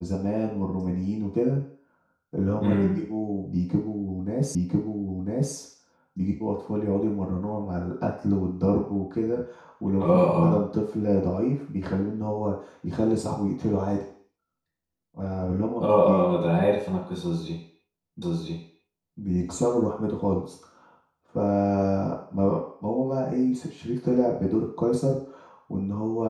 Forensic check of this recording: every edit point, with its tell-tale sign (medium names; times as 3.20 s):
4.55 s: repeat of the last 1 s
18.22 s: repeat of the last 1 s